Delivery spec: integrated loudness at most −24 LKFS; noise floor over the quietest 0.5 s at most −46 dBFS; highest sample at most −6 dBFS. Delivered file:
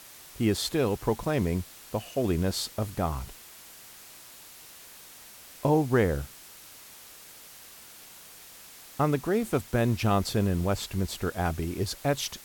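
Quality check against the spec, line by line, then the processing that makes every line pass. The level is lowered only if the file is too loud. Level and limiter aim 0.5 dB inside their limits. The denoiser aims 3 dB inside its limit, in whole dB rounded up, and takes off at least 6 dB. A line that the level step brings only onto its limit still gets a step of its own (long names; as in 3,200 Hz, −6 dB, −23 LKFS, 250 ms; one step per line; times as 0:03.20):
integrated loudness −28.5 LKFS: in spec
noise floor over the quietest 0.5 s −49 dBFS: in spec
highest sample −11.0 dBFS: in spec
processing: no processing needed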